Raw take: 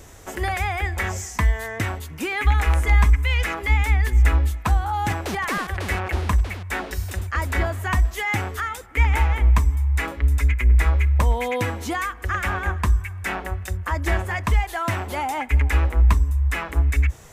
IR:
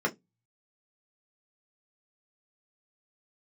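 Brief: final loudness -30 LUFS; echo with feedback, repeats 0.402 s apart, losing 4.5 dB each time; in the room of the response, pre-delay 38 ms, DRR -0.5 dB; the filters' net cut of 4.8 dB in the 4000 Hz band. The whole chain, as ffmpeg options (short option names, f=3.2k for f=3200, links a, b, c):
-filter_complex "[0:a]equalizer=f=4k:t=o:g=-7,aecho=1:1:402|804|1206|1608|2010|2412|2814|3216|3618:0.596|0.357|0.214|0.129|0.0772|0.0463|0.0278|0.0167|0.01,asplit=2[a][b];[1:a]atrim=start_sample=2205,adelay=38[c];[b][c]afir=irnorm=-1:irlink=0,volume=-9.5dB[d];[a][d]amix=inputs=2:normalize=0,volume=-10dB"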